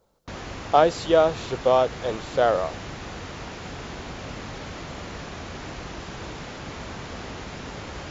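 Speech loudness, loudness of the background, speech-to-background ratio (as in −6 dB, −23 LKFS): −22.0 LKFS, −36.5 LKFS, 14.5 dB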